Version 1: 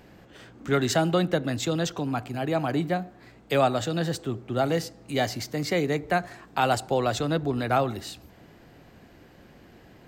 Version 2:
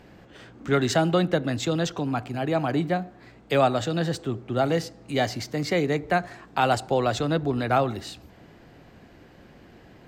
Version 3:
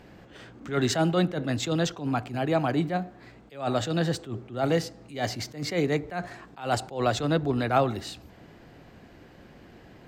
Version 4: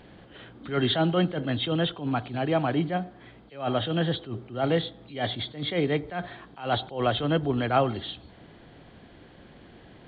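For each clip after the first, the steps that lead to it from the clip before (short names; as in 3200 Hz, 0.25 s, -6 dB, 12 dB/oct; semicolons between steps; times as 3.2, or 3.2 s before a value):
high shelf 10000 Hz -10.5 dB; gain +1.5 dB
attack slew limiter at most 150 dB/s
nonlinear frequency compression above 3000 Hz 4:1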